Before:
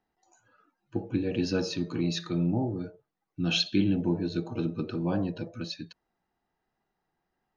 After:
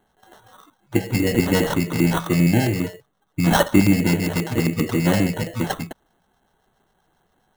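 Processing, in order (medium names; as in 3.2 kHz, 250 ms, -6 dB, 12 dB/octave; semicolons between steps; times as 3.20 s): in parallel at +2 dB: compression, threshold -38 dBFS, peak gain reduction 17.5 dB; on the sum: sample-rate reducer 2.4 kHz, jitter 0%; LFO notch square 7.5 Hz 320–5100 Hz; trim +9 dB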